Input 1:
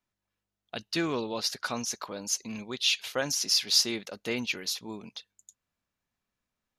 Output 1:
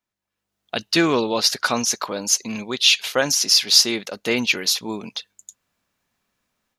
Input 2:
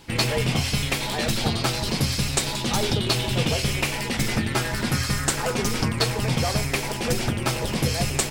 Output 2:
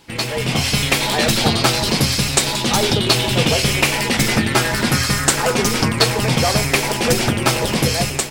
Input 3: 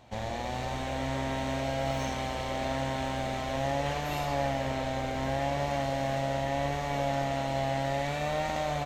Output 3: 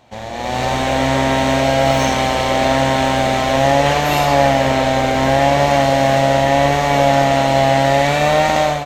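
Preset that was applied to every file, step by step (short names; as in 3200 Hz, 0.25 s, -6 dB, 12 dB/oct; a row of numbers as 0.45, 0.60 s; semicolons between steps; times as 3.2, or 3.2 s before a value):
low shelf 110 Hz -8.5 dB; AGC gain up to 12 dB; normalise peaks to -1.5 dBFS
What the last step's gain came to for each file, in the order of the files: +0.5, 0.0, +5.5 dB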